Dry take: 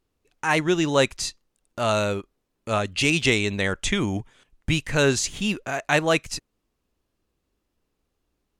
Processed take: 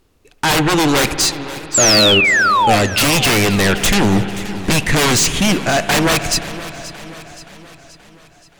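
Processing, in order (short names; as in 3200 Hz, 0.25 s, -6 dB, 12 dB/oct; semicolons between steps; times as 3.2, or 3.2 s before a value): in parallel at -5 dB: sine folder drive 20 dB, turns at -4 dBFS; on the sum: spring tank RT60 3.8 s, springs 56 ms, chirp 40 ms, DRR 11 dB; painted sound fall, 1.74–2.76, 680–7900 Hz -10 dBFS; warbling echo 0.526 s, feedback 53%, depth 81 cents, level -16 dB; gain -3 dB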